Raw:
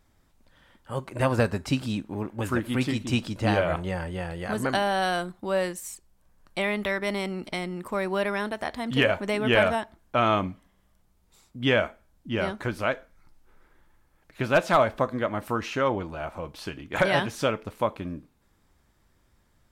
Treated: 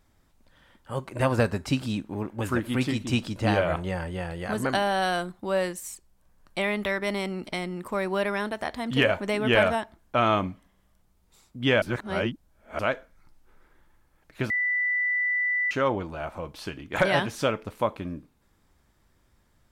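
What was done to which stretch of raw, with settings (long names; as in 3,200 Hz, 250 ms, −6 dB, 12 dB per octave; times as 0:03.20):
0:11.82–0:12.79: reverse
0:14.50–0:15.71: beep over 1,980 Hz −22.5 dBFS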